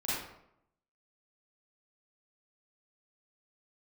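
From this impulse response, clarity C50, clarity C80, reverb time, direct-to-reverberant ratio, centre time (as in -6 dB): -3.5 dB, 2.0 dB, 0.75 s, -10.0 dB, 78 ms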